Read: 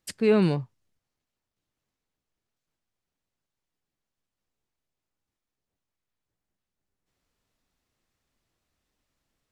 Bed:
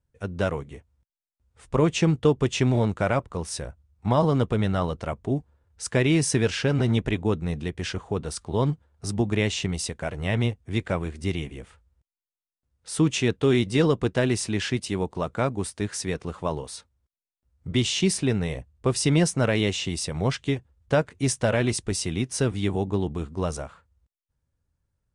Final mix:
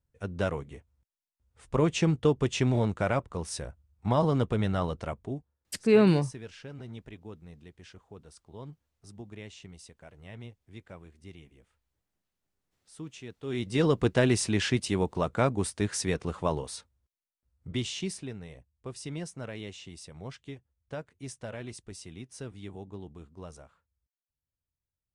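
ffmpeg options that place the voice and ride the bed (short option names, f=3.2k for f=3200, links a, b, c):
-filter_complex "[0:a]adelay=5650,volume=0.5dB[a];[1:a]volume=16dB,afade=t=out:st=5.03:d=0.51:silence=0.149624,afade=t=in:st=13.42:d=0.65:silence=0.1,afade=t=out:st=16.41:d=1.93:silence=0.149624[b];[a][b]amix=inputs=2:normalize=0"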